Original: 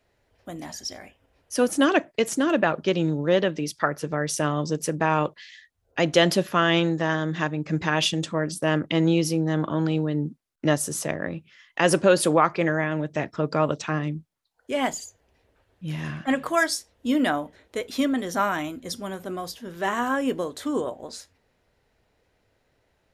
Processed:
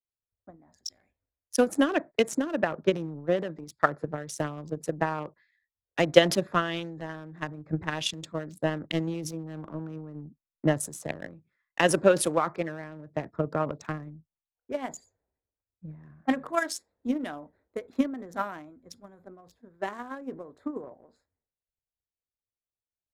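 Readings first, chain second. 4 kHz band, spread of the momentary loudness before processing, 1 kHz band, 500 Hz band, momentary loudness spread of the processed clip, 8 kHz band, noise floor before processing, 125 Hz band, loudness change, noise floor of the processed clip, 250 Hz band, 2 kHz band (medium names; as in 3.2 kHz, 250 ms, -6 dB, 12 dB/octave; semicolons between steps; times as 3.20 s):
-6.0 dB, 14 LU, -6.0 dB, -4.0 dB, 17 LU, -6.0 dB, -70 dBFS, -8.0 dB, -5.0 dB, under -85 dBFS, -6.5 dB, -6.5 dB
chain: local Wiener filter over 15 samples; peaking EQ 4.6 kHz -3.5 dB 0.28 oct; transient shaper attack +12 dB, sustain +8 dB; in parallel at -11 dB: hard clipper -5 dBFS, distortion -14 dB; on the sum: three bands expanded up and down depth 70%; trim -14.5 dB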